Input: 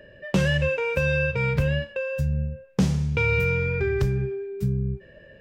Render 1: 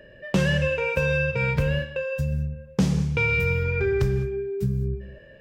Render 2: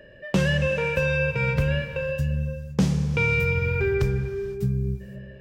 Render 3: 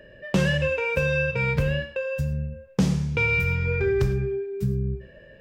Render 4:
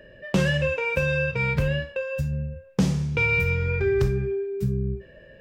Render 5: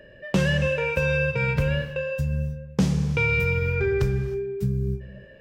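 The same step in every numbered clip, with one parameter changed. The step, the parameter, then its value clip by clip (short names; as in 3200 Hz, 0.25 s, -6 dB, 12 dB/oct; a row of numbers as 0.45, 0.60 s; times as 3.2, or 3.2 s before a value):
non-linear reverb, gate: 230, 540, 130, 80, 340 ms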